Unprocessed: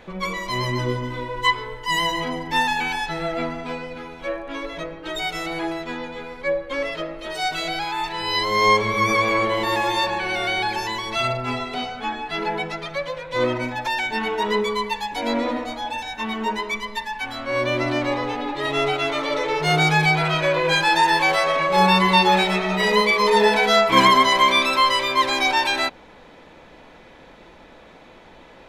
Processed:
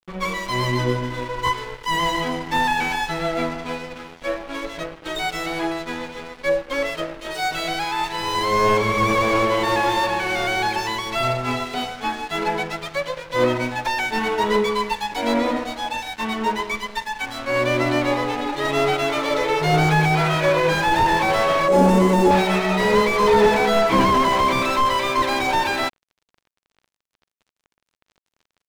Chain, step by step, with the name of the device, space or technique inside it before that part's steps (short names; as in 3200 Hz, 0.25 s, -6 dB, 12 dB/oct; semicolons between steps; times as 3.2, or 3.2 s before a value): early transistor amplifier (crossover distortion -38 dBFS; slew limiter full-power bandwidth 110 Hz); 21.68–22.31 graphic EQ 125/250/500/1000/2000/4000/8000 Hz -9/+8/+5/-5/-5/-7/+5 dB; gain +4 dB